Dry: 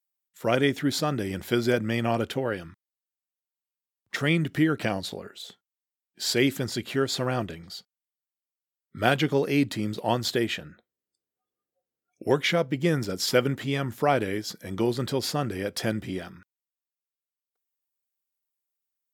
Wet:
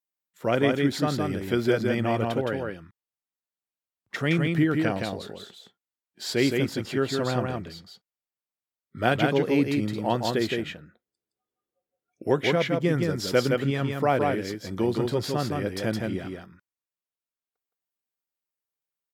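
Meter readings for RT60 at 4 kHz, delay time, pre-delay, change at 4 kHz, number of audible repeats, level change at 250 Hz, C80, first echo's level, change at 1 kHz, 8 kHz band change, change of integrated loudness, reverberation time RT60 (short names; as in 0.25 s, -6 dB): none, 0.166 s, none, -2.5 dB, 1, +1.5 dB, none, -3.5 dB, +1.0 dB, -4.5 dB, +1.0 dB, none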